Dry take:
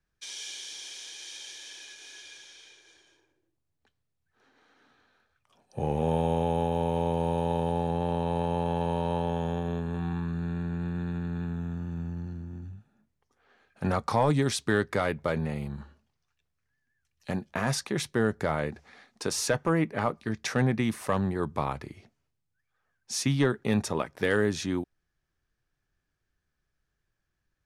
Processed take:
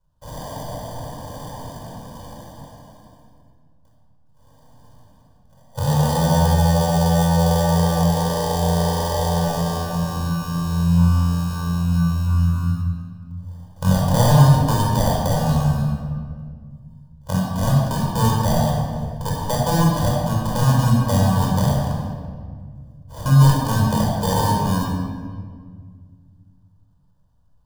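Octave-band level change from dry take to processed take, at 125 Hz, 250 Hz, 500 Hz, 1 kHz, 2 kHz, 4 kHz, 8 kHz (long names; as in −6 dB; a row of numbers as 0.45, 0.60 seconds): +15.0, +9.5, +5.0, +9.5, +2.0, +8.0, +7.5 decibels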